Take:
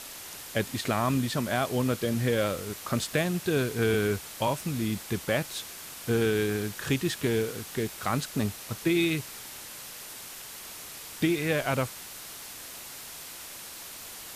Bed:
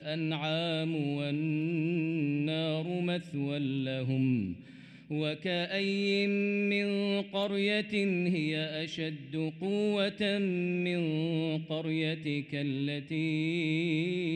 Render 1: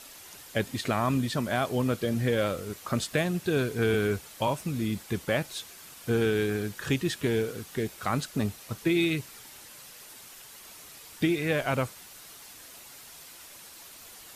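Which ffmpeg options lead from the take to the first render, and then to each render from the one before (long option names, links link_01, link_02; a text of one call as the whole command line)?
ffmpeg -i in.wav -af "afftdn=noise_reduction=7:noise_floor=-43" out.wav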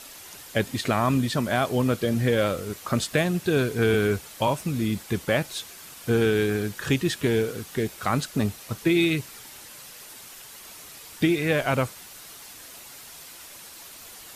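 ffmpeg -i in.wav -af "volume=4dB" out.wav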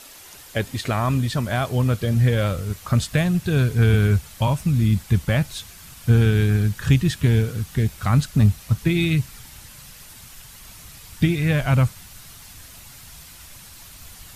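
ffmpeg -i in.wav -af "asubboost=boost=10:cutoff=120" out.wav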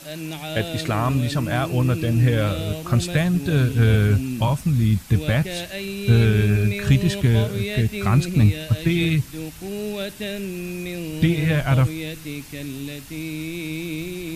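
ffmpeg -i in.wav -i bed.wav -filter_complex "[1:a]volume=1dB[link_01];[0:a][link_01]amix=inputs=2:normalize=0" out.wav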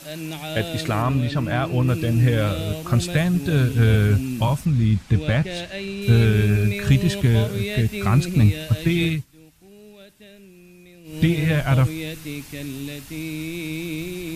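ffmpeg -i in.wav -filter_complex "[0:a]asettb=1/sr,asplit=3[link_01][link_02][link_03];[link_01]atrim=end=1.024[link_04];[link_02]atrim=start=1.02:end=1.88,asetpts=PTS-STARTPTS,afade=type=in:duration=0.004:curve=qsin,afade=type=out:start_time=0.856:duration=0.004:curve=qsin,acrossover=split=4400[link_05][link_06];[link_06]acompressor=threshold=-50dB:ratio=4:attack=1:release=60[link_07];[link_05][link_07]amix=inputs=2:normalize=0[link_08];[link_03]atrim=start=1.876[link_09];[link_04][link_08]acrossfade=duration=0.004:curve1=hsin:curve2=qsin[link_10];[link_10][link_09]acrossfade=duration=0.004:curve1=qsin:curve2=hsin,asettb=1/sr,asplit=3[link_11][link_12][link_13];[link_11]atrim=end=4.654[link_14];[link_12]atrim=start=4.65:end=6.02,asetpts=PTS-STARTPTS,afade=type=in:duration=0.004:curve=qsin,afade=type=out:start_time=1.366:duration=0.004:curve=qsin,adynamicsmooth=sensitivity=2:basefreq=6300[link_15];[link_13]atrim=start=6.016[link_16];[link_14][link_15]acrossfade=duration=0.004:curve1=hsin:curve2=qsin[link_17];[link_17][link_16]acrossfade=duration=0.004:curve1=qsin:curve2=hsin,asplit=3[link_18][link_19][link_20];[link_18]atrim=end=9.25,asetpts=PTS-STARTPTS,afade=type=out:start_time=9.06:duration=0.19:silence=0.133352[link_21];[link_19]atrim=start=9.25:end=11.04,asetpts=PTS-STARTPTS,volume=-17.5dB[link_22];[link_20]atrim=start=11.04,asetpts=PTS-STARTPTS,afade=type=in:duration=0.19:silence=0.133352[link_23];[link_21][link_22][link_23]concat=n=3:v=0:a=1" out.wav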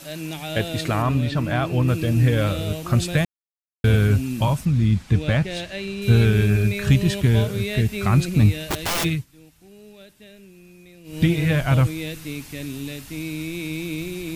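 ffmpeg -i in.wav -filter_complex "[0:a]asplit=3[link_01][link_02][link_03];[link_01]afade=type=out:start_time=8.62:duration=0.02[link_04];[link_02]aeval=exprs='(mod(8.41*val(0)+1,2)-1)/8.41':channel_layout=same,afade=type=in:start_time=8.62:duration=0.02,afade=type=out:start_time=9.03:duration=0.02[link_05];[link_03]afade=type=in:start_time=9.03:duration=0.02[link_06];[link_04][link_05][link_06]amix=inputs=3:normalize=0,asplit=3[link_07][link_08][link_09];[link_07]atrim=end=3.25,asetpts=PTS-STARTPTS,afade=type=out:start_time=3.246:duration=0.004:curve=hsin[link_10];[link_08]atrim=start=3.25:end=3.84,asetpts=PTS-STARTPTS,volume=0[link_11];[link_09]atrim=start=3.84,asetpts=PTS-STARTPTS,afade=type=in:duration=0.004:curve=hsin[link_12];[link_10][link_11][link_12]concat=n=3:v=0:a=1" out.wav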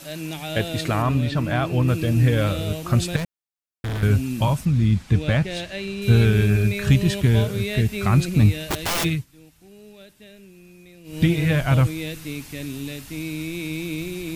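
ffmpeg -i in.wav -filter_complex "[0:a]asettb=1/sr,asplit=3[link_01][link_02][link_03];[link_01]atrim=end=3.164[link_04];[link_02]atrim=start=3.16:end=4.03,asetpts=PTS-STARTPTS,afade=type=in:duration=0.004:curve=qsin,afade=type=out:start_time=0.866:duration=0.004:curve=qsin,volume=24.5dB,asoftclip=hard,volume=-24.5dB[link_05];[link_03]atrim=start=4.026[link_06];[link_04][link_05]acrossfade=duration=0.004:curve1=hsin:curve2=qsin[link_07];[link_07][link_06]acrossfade=duration=0.004:curve1=qsin:curve2=hsin" out.wav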